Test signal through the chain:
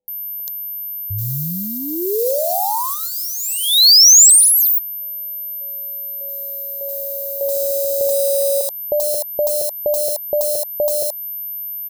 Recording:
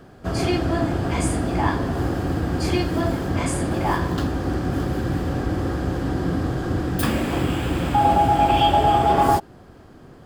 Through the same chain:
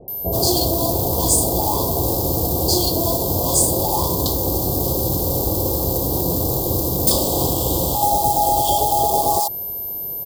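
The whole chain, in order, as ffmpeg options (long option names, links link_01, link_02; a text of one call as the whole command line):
ffmpeg -i in.wav -filter_complex "[0:a]asplit=2[link_01][link_02];[link_02]adynamicsmooth=sensitivity=5.5:basefreq=2200,volume=2dB[link_03];[link_01][link_03]amix=inputs=2:normalize=0,equalizer=frequency=250:width_type=o:width=1:gain=-7,equalizer=frequency=500:width_type=o:width=1:gain=7,equalizer=frequency=1000:width_type=o:width=1:gain=6,equalizer=frequency=4000:width_type=o:width=1:gain=4,equalizer=frequency=8000:width_type=o:width=1:gain=8,equalizer=frequency=16000:width_type=o:width=1:gain=-6,aeval=exprs='val(0)+0.01*sin(2*PI*13000*n/s)':channel_layout=same,alimiter=limit=-3dB:level=0:latency=1:release=16,acompressor=threshold=-11dB:ratio=2.5,acrusher=bits=6:mode=log:mix=0:aa=0.000001,acrossover=split=740[link_04][link_05];[link_05]adelay=80[link_06];[link_04][link_06]amix=inputs=2:normalize=0,crystalizer=i=5.5:c=0,asuperstop=centerf=1900:order=8:qfactor=0.65,volume=-4.5dB" out.wav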